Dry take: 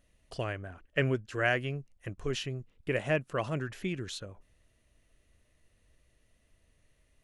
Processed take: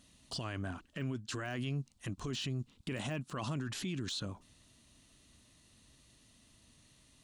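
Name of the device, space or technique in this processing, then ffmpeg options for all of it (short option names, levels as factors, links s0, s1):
broadcast voice chain: -af "highpass=f=71:p=1,equalizer=f=125:t=o:w=1:g=4,equalizer=f=250:t=o:w=1:g=10,equalizer=f=500:t=o:w=1:g=-7,equalizer=f=1000:t=o:w=1:g=7,equalizer=f=2000:t=o:w=1:g=-5,equalizer=f=4000:t=o:w=1:g=9,equalizer=f=8000:t=o:w=1:g=9,deesser=0.95,acompressor=threshold=0.0251:ratio=4,equalizer=f=3400:t=o:w=1.7:g=2.5,alimiter=level_in=2.66:limit=0.0631:level=0:latency=1:release=20,volume=0.376,volume=1.33"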